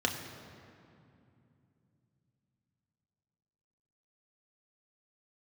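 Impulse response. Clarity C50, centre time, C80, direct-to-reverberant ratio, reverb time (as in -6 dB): 6.5 dB, 48 ms, 7.5 dB, 1.5 dB, 2.6 s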